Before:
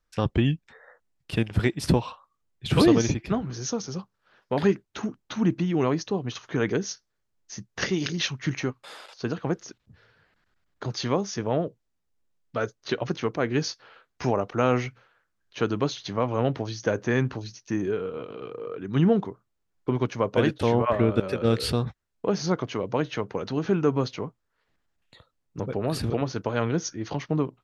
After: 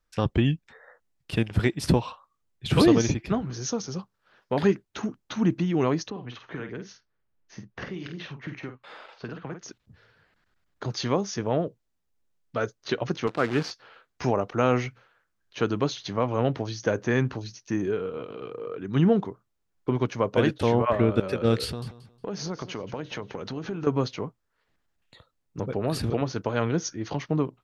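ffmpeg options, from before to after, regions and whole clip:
ffmpeg -i in.wav -filter_complex "[0:a]asettb=1/sr,asplit=3[link_01][link_02][link_03];[link_01]atrim=end=6.104[link_04];[link_02]atrim=start=6.1:end=9.63,asetpts=PTS-STARTPTS,afade=type=in:duration=0.004:curve=qsin,afade=type=out:start_time=3.526:duration=0.004:curve=qsin,lowpass=2700,acrossover=split=250|1200[link_05][link_06][link_07];[link_05]acompressor=threshold=-40dB:ratio=4[link_08];[link_06]acompressor=threshold=-41dB:ratio=4[link_09];[link_07]acompressor=threshold=-43dB:ratio=4[link_10];[link_08][link_09][link_10]amix=inputs=3:normalize=0,asplit=2[link_11][link_12];[link_12]adelay=49,volume=-7.5dB[link_13];[link_11][link_13]amix=inputs=2:normalize=0,atrim=end_sample=155673[link_14];[link_03]atrim=start=9.626[link_15];[link_04][link_14]acrossfade=duration=0.004:curve1=hsin:curve2=qsin[link_16];[link_16][link_15]acrossfade=duration=0.004:curve1=qsin:curve2=hsin,asettb=1/sr,asplit=3[link_17][link_18][link_19];[link_17]atrim=end=13.274[link_20];[link_18]atrim=start=13.27:end=13.71,asetpts=PTS-STARTPTS,afade=type=in:duration=0.004:curve=qsin,afade=type=out:start_time=0.436:duration=0.004:curve=qsin,equalizer=frequency=1300:width=5.3:gain=8.5,acrusher=bits=6:dc=4:mix=0:aa=0.000001,highpass=110,lowpass=3900[link_21];[link_19]atrim=start=13.706[link_22];[link_20][link_21]acrossfade=duration=0.004:curve1=hsin:curve2=qsin[link_23];[link_23][link_22]acrossfade=duration=0.004:curve1=qsin:curve2=hsin,asettb=1/sr,asplit=3[link_24][link_25][link_26];[link_24]atrim=end=21.644[link_27];[link_25]atrim=start=21.64:end=23.87,asetpts=PTS-STARTPTS,afade=type=in:duration=0.004:curve=qsin,afade=type=out:start_time=2.226:duration=0.004:curve=qsin,acompressor=threshold=-30dB:ratio=4:attack=3.2:release=140:knee=1:detection=peak,aecho=1:1:180|360|540:0.188|0.0471|0.0118,atrim=end_sample=98343[link_28];[link_26]atrim=start=23.866[link_29];[link_27][link_28]acrossfade=duration=0.004:curve1=hsin:curve2=qsin[link_30];[link_30][link_29]acrossfade=duration=0.004:curve1=qsin:curve2=hsin" out.wav

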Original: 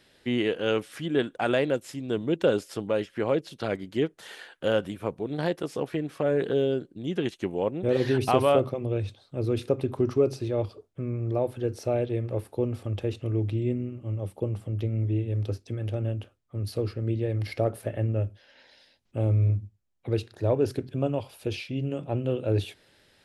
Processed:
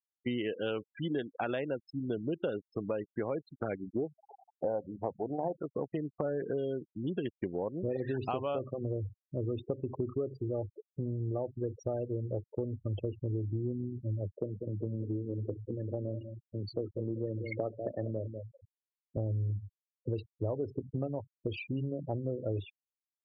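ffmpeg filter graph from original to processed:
ffmpeg -i in.wav -filter_complex "[0:a]asettb=1/sr,asplit=3[link_01][link_02][link_03];[link_01]atrim=end=3.824[link_04];[link_02]atrim=start=3.82:end=5.57,asetpts=PTS-STARTPTS,afade=type=in:duration=0.004:curve=qsin,afade=type=out:start_time=1.746:duration=0.004:curve=qsin,lowpass=frequency=770:width_type=q:width=3.8,bandreject=frequency=50:width_type=h:width=6,bandreject=frequency=100:width_type=h:width=6,bandreject=frequency=150:width_type=h:width=6,bandreject=frequency=200:width_type=h:width=6[link_05];[link_03]atrim=start=5.566[link_06];[link_04][link_05]acrossfade=duration=0.004:curve1=hsin:curve2=qsin[link_07];[link_07][link_06]acrossfade=duration=0.004:curve1=qsin:curve2=hsin,asettb=1/sr,asplit=3[link_08][link_09][link_10];[link_08]atrim=end=14.404[link_11];[link_09]atrim=start=14.4:end=19.17,asetpts=PTS-STARTPTS,afade=type=in:duration=0.004:curve=qsin,afade=type=out:start_time=4.766:duration=0.004:curve=qsin,highpass=160,asplit=2[link_12][link_13];[link_13]adelay=194,lowpass=frequency=960:poles=1,volume=-9.5dB,asplit=2[link_14][link_15];[link_15]adelay=194,lowpass=frequency=960:poles=1,volume=0.41,asplit=2[link_16][link_17];[link_17]adelay=194,lowpass=frequency=960:poles=1,volume=0.41,asplit=2[link_18][link_19];[link_19]adelay=194,lowpass=frequency=960:poles=1,volume=0.41[link_20];[link_12][link_14][link_16][link_18][link_20]amix=inputs=5:normalize=0,atrim=end_sample=210357[link_21];[link_10]atrim=start=19.166[link_22];[link_11][link_21]acrossfade=duration=0.004:curve1=hsin:curve2=qsin[link_23];[link_23][link_22]acrossfade=duration=0.004:curve1=qsin:curve2=hsin,afftfilt=real='re*gte(hypot(re,im),0.0316)':imag='im*gte(hypot(re,im),0.0316)':win_size=1024:overlap=0.75,acompressor=threshold=-31dB:ratio=6" out.wav

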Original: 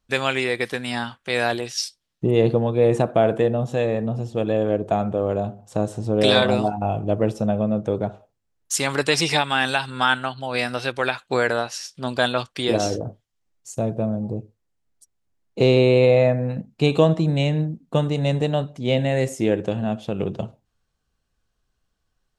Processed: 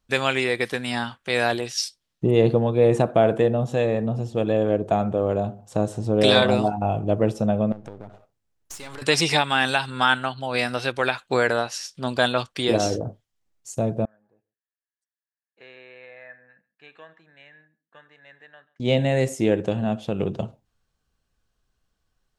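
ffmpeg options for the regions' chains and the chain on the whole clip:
ffmpeg -i in.wav -filter_complex "[0:a]asettb=1/sr,asplit=3[link_01][link_02][link_03];[link_01]atrim=end=7.724[link_04];[link_02]atrim=start=7.72:end=9.02,asetpts=PTS-STARTPTS,afade=type=in:duration=0.004:curve=qsin,afade=type=out:start_time=1.296:duration=0.004:curve=qsin,aeval=exprs='if(lt(val(0),0),0.251*val(0),val(0))':channel_layout=same,acompressor=threshold=-34dB:ratio=6:attack=3.2:release=140:knee=1:detection=peak[link_05];[link_03]atrim=start=9.016[link_06];[link_04][link_05]acrossfade=duration=0.004:curve1=hsin:curve2=qsin[link_07];[link_07][link_06]acrossfade=duration=0.004:curve1=qsin:curve2=hsin,asettb=1/sr,asplit=3[link_08][link_09][link_10];[link_08]atrim=end=14.054[link_11];[link_09]atrim=start=14.05:end=18.8,asetpts=PTS-STARTPTS,afade=type=in:duration=0.004:curve=qsin,afade=type=out:start_time=4.746:duration=0.004:curve=qsin,bandpass=frequency=1700:width_type=q:width=13,aecho=1:1:136:0.0708,atrim=end_sample=209475[link_12];[link_10]atrim=start=18.796[link_13];[link_11][link_12]acrossfade=duration=0.004:curve1=hsin:curve2=qsin[link_14];[link_14][link_13]acrossfade=duration=0.004:curve1=qsin:curve2=hsin" out.wav

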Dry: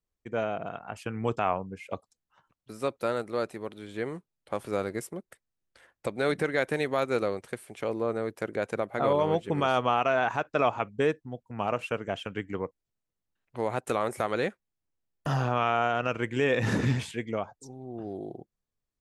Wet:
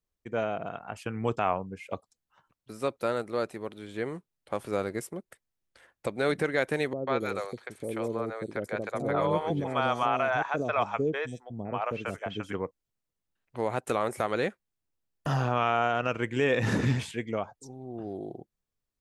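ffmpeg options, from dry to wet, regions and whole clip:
ffmpeg -i in.wav -filter_complex "[0:a]asettb=1/sr,asplit=3[link_01][link_02][link_03];[link_01]atrim=end=6.934[link_04];[link_02]atrim=start=6.93:end=12.53,asetpts=PTS-STARTPTS,afade=type=in:duration=0.004:curve=qsin,afade=type=out:start_time=5.596:duration=0.004:curve=qsin,bandreject=frequency=2800:width=11,acrossover=split=530|4700[link_05][link_06][link_07];[link_06]adelay=140[link_08];[link_07]adelay=270[link_09];[link_05][link_08][link_09]amix=inputs=3:normalize=0,atrim=end_sample=246960[link_10];[link_03]atrim=start=12.526[link_11];[link_04][link_10]acrossfade=duration=0.004:curve1=hsin:curve2=qsin[link_12];[link_12][link_11]acrossfade=duration=0.004:curve1=qsin:curve2=hsin" out.wav

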